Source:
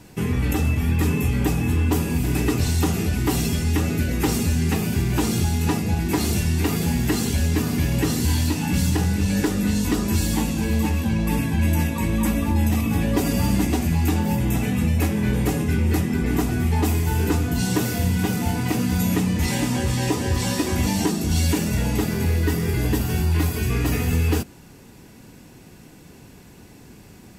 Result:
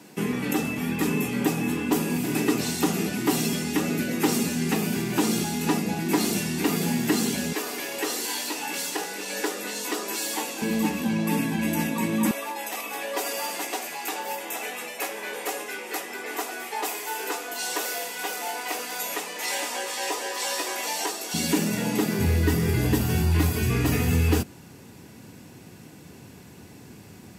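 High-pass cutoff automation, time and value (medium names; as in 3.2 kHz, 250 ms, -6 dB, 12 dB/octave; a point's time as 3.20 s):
high-pass 24 dB/octave
180 Hz
from 7.53 s 400 Hz
from 10.62 s 180 Hz
from 12.31 s 490 Hz
from 21.34 s 170 Hz
from 22.19 s 75 Hz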